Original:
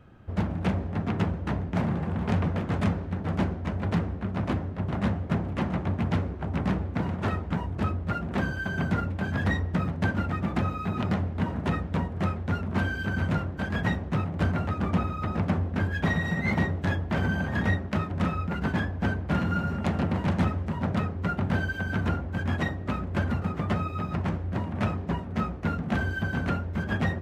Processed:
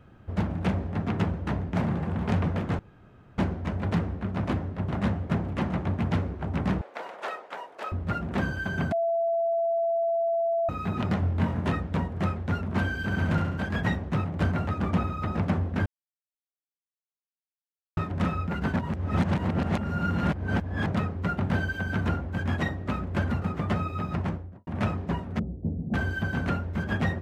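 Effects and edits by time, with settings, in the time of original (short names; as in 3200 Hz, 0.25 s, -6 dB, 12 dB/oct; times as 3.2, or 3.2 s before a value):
2.79–3.38 room tone
6.81–7.92 Chebyshev high-pass 520 Hz, order 3
8.92–10.69 bleep 671 Hz -22.5 dBFS
11.2–11.72 flutter echo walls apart 3.9 m, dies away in 0.23 s
12.97–13.59 flutter echo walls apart 11.8 m, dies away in 0.76 s
15.86–17.97 mute
18.76–20.86 reverse
24.17–24.67 studio fade out
25.39–25.94 Gaussian blur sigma 18 samples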